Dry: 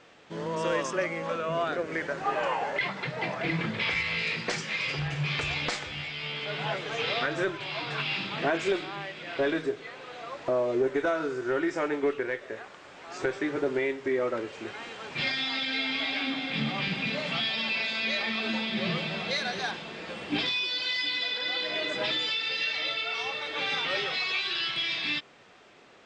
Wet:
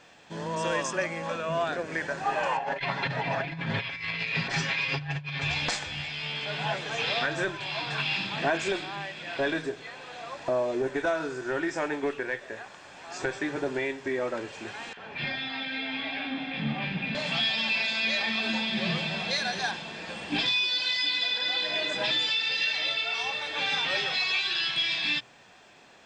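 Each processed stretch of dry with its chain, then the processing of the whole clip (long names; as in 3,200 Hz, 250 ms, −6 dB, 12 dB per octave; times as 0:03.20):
0:02.57–0:05.50: low-pass filter 3,900 Hz + comb filter 7.3 ms, depth 86% + compressor whose output falls as the input rises −31 dBFS, ratio −0.5
0:14.93–0:17.15: low-pass filter 2,300 Hz + multiband delay without the direct sound highs, lows 40 ms, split 1,100 Hz
whole clip: high-shelf EQ 7,000 Hz +9.5 dB; mains-hum notches 60/120 Hz; comb filter 1.2 ms, depth 35%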